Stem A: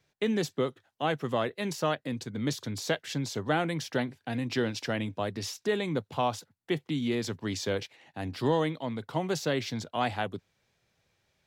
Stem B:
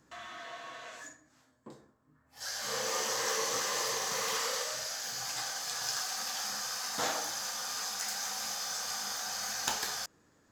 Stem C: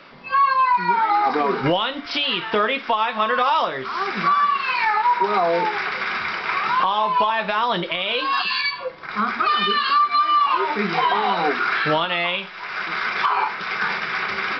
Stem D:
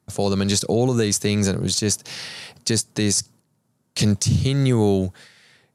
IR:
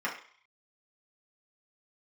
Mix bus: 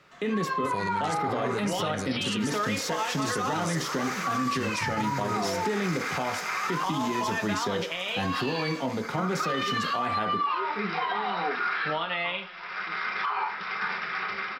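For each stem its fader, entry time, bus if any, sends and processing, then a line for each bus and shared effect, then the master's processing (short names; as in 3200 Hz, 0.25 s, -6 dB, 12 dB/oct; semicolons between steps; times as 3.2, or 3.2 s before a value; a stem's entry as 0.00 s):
+2.5 dB, 0.00 s, send -6.5 dB, no echo send, bell 220 Hz +5.5 dB 2.9 oct; compressor, threshold -26 dBFS, peak gain reduction 9 dB
7.3 s -6 dB -> 7.87 s -15 dB, 0.00 s, no send, echo send -16 dB, dry
-15.5 dB, 0.00 s, send -12.5 dB, echo send -20 dB, AGC gain up to 6.5 dB
-2.0 dB, 0.55 s, no send, no echo send, auto duck -12 dB, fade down 1.00 s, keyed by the first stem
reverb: on, RT60 0.50 s, pre-delay 3 ms
echo: echo 0.384 s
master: limiter -19.5 dBFS, peak gain reduction 9.5 dB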